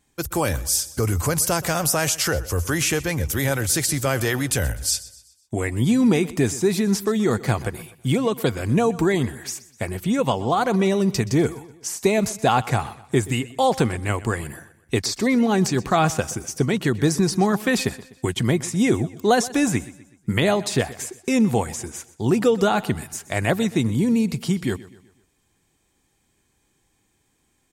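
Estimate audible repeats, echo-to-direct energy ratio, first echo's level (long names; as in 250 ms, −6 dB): 3, −17.5 dB, −18.5 dB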